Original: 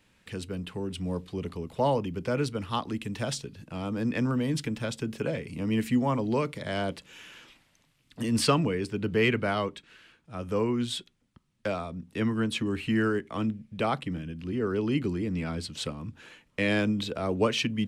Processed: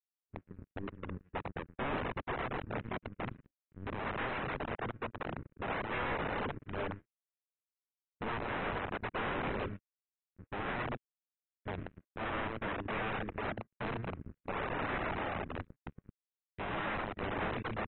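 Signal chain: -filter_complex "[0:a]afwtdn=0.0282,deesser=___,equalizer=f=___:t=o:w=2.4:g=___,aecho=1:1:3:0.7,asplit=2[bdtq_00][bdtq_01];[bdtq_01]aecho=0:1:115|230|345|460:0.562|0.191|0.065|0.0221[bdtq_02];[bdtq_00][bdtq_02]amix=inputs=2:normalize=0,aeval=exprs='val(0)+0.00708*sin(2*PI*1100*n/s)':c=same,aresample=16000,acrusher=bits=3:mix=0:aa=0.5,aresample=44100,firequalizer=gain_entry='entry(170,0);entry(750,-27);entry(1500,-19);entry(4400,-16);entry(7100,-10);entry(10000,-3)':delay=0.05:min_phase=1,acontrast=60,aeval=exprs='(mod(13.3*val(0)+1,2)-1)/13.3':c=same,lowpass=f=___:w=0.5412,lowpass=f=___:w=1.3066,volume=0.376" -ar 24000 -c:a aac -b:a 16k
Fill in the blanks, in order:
0.95, 99, 5.5, 2.7k, 2.7k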